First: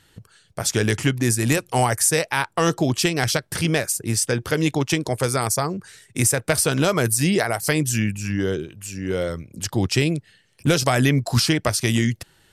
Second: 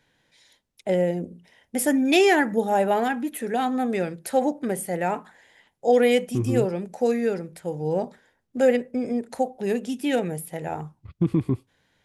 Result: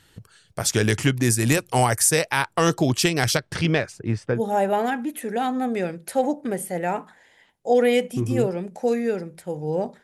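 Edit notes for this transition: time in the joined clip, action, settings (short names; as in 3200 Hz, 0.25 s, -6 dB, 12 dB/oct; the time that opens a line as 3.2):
first
3.37–4.44 LPF 6700 Hz -> 1100 Hz
4.38 switch to second from 2.56 s, crossfade 0.12 s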